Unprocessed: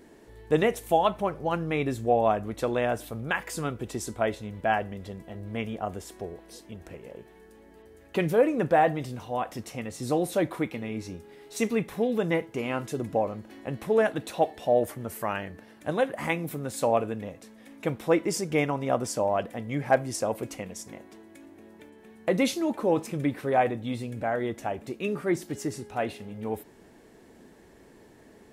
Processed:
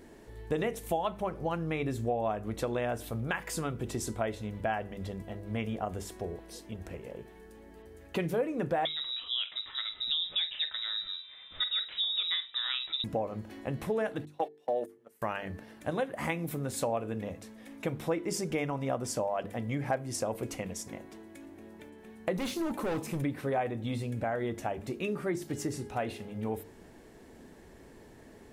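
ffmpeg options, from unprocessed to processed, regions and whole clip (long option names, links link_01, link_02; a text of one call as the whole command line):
ffmpeg -i in.wav -filter_complex "[0:a]asettb=1/sr,asplit=3[link_01][link_02][link_03];[link_01]atrim=end=8.854[link_04];[link_02]atrim=start=8.85:end=13.04,asetpts=PTS-STARTPTS,afade=type=in:duration=0.004:curve=qsin,afade=type=out:start_time=4.186:duration=0.004:curve=qsin,asplit=2[link_05][link_06];[link_06]adelay=47,volume=-13.5dB[link_07];[link_05][link_07]amix=inputs=2:normalize=0,atrim=end_sample=184779,lowpass=frequency=3400:width_type=q:width=0.5098,lowpass=frequency=3400:width_type=q:width=0.6013,lowpass=frequency=3400:width_type=q:width=0.9,lowpass=frequency=3400:width_type=q:width=2.563,afreqshift=-4000[link_08];[link_03]atrim=start=13.036[link_09];[link_04][link_08]acrossfade=duration=0.004:curve1=hsin:curve2=qsin[link_10];[link_10][link_09]acrossfade=duration=0.004:curve1=qsin:curve2=hsin,asettb=1/sr,asplit=3[link_11][link_12][link_13];[link_11]atrim=end=14.254[link_14];[link_12]atrim=start=14.25:end=15.22,asetpts=PTS-STARTPTS,afade=type=in:duration=0.004:curve=qsin,afade=type=out:start_time=0.966:duration=0.004:curve=qsin,agate=range=-26dB:threshold=-30dB:ratio=16:release=100:detection=peak,highpass=320,bandreject=frequency=650:width=10[link_15];[link_13]atrim=start=15.216[link_16];[link_14][link_15]acrossfade=duration=0.004:curve1=hsin:curve2=qsin[link_17];[link_17][link_16]acrossfade=duration=0.004:curve1=qsin:curve2=hsin,asettb=1/sr,asplit=3[link_18][link_19][link_20];[link_18]atrim=end=22.364[link_21];[link_19]atrim=start=22.36:end=23.22,asetpts=PTS-STARTPTS,afade=type=in:duration=0.004:curve=qsin,afade=type=out:start_time=0.856:duration=0.004:curve=qsin,highshelf=frequency=8100:gain=10,asoftclip=type=hard:threshold=-27dB,acrossover=split=4000[link_22][link_23];[link_23]acompressor=threshold=-41dB:ratio=4:attack=1:release=60[link_24];[link_22][link_24]amix=inputs=2:normalize=0[link_25];[link_20]atrim=start=23.216[link_26];[link_21][link_25]acrossfade=duration=0.004:curve1=hsin:curve2=qsin[link_27];[link_27][link_26]acrossfade=duration=0.004:curve1=qsin:curve2=hsin,lowshelf=frequency=100:gain=8,bandreject=frequency=50:width_type=h:width=6,bandreject=frequency=100:width_type=h:width=6,bandreject=frequency=150:width_type=h:width=6,bandreject=frequency=200:width_type=h:width=6,bandreject=frequency=250:width_type=h:width=6,bandreject=frequency=300:width_type=h:width=6,bandreject=frequency=350:width_type=h:width=6,bandreject=frequency=400:width_type=h:width=6,bandreject=frequency=450:width_type=h:width=6,acompressor=threshold=-30dB:ratio=3" out.wav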